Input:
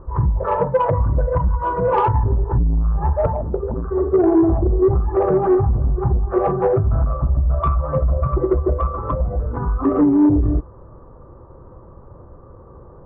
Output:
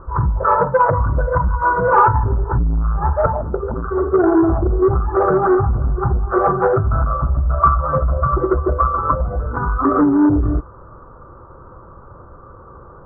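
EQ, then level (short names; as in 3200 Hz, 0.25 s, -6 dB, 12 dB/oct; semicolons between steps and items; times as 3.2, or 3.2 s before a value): synth low-pass 1400 Hz, resonance Q 6.3; 0.0 dB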